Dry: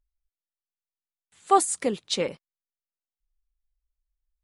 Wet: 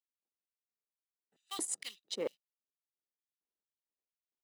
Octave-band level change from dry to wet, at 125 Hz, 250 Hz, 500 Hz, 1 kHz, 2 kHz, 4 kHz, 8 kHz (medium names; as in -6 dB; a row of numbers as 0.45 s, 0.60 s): -20.5 dB, -17.0 dB, -15.0 dB, -27.5 dB, -13.0 dB, -10.5 dB, -9.5 dB